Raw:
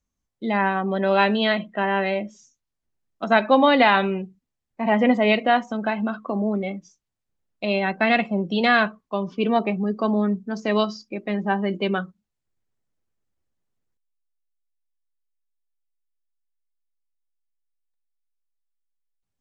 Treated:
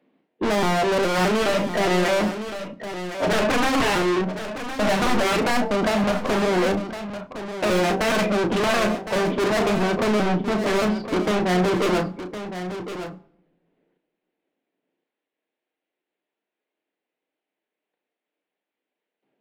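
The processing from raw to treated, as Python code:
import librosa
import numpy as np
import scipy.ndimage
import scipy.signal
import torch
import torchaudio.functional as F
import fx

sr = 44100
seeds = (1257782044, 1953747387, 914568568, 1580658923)

p1 = fx.pitch_trill(x, sr, semitones=-1.5, every_ms=208)
p2 = scipy.signal.sosfilt(scipy.signal.butter(4, 260.0, 'highpass', fs=sr, output='sos'), p1)
p3 = fx.peak_eq(p2, sr, hz=1200.0, db=-13.0, octaves=1.1)
p4 = fx.level_steps(p3, sr, step_db=18)
p5 = p3 + F.gain(torch.from_numpy(p4), 1.5).numpy()
p6 = fx.fold_sine(p5, sr, drive_db=19, ceiling_db=-2.5)
p7 = scipy.ndimage.gaussian_filter1d(p6, 3.8, mode='constant')
p8 = 10.0 ** (-20.5 / 20.0) * np.tanh(p7 / 10.0 ** (-20.5 / 20.0))
p9 = fx.doubler(p8, sr, ms=33.0, db=-8.5)
p10 = p9 + 10.0 ** (-10.5 / 20.0) * np.pad(p9, (int(1062 * sr / 1000.0), 0))[:len(p9)]
y = fx.room_shoebox(p10, sr, seeds[0], volume_m3=2600.0, walls='furnished', distance_m=0.48)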